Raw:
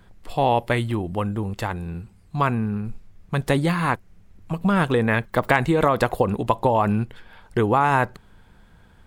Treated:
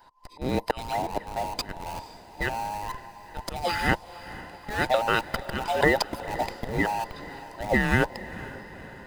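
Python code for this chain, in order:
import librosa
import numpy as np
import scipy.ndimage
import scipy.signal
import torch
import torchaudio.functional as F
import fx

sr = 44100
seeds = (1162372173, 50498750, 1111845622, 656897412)

p1 = fx.band_invert(x, sr, width_hz=1000)
p2 = fx.auto_swell(p1, sr, attack_ms=250.0)
p3 = fx.peak_eq(p2, sr, hz=4800.0, db=12.0, octaves=0.32)
p4 = fx.schmitt(p3, sr, flips_db=-27.0)
p5 = p3 + (p4 * 10.0 ** (-7.5 / 20.0))
p6 = fx.hpss(p5, sr, part='harmonic', gain_db=-10)
y = fx.echo_diffused(p6, sr, ms=483, feedback_pct=59, wet_db=-15.5)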